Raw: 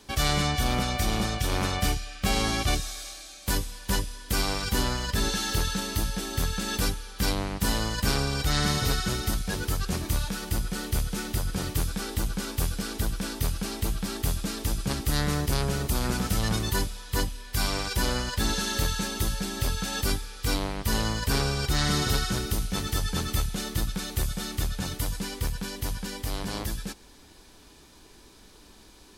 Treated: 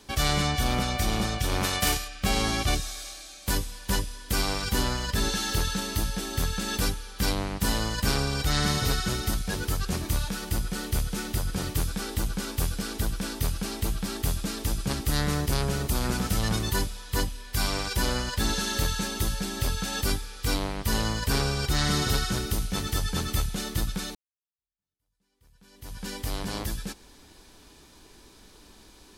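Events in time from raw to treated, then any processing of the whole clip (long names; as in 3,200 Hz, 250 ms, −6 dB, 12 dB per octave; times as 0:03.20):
0:01.63–0:02.07: spectral envelope flattened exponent 0.6
0:24.15–0:26.08: fade in exponential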